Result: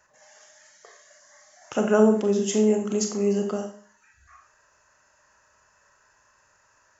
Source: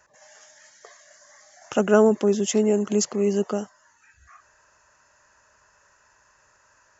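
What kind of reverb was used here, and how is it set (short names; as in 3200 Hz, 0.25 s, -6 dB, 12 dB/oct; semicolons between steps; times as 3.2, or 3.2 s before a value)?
Schroeder reverb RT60 0.45 s, combs from 29 ms, DRR 4 dB; gain -3.5 dB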